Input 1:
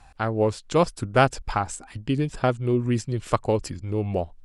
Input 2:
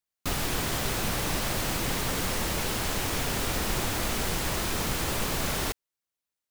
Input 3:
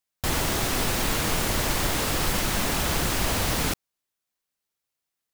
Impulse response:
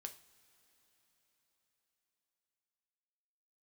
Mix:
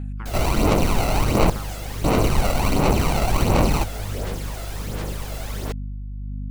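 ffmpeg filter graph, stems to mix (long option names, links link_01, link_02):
-filter_complex "[0:a]acompressor=threshold=-30dB:ratio=6,asplit=2[link_01][link_02];[link_02]afreqshift=-0.93[link_03];[link_01][link_03]amix=inputs=2:normalize=1,volume=-3.5dB[link_04];[1:a]equalizer=frequency=500:width_type=o:width=0.9:gain=7,volume=-8dB[link_05];[2:a]acrusher=samples=26:mix=1:aa=0.000001,adelay=100,volume=2.5dB,asplit=3[link_06][link_07][link_08];[link_06]atrim=end=1.5,asetpts=PTS-STARTPTS,afade=type=out:start_time=1.496:duration=0.004:curve=hsin[link_09];[link_07]atrim=start=1.5:end=2.04,asetpts=PTS-STARTPTS,volume=0[link_10];[link_08]atrim=start=2.04,asetpts=PTS-STARTPTS,afade=type=in:duration=0.004:curve=hsin[link_11];[link_09][link_10][link_11]concat=n=3:v=0:a=1[link_12];[link_04][link_05][link_12]amix=inputs=3:normalize=0,aeval=exprs='val(0)+0.02*(sin(2*PI*50*n/s)+sin(2*PI*2*50*n/s)/2+sin(2*PI*3*50*n/s)/3+sin(2*PI*4*50*n/s)/4+sin(2*PI*5*50*n/s)/5)':channel_layout=same,aphaser=in_gain=1:out_gain=1:delay=1.5:decay=0.51:speed=1.4:type=sinusoidal"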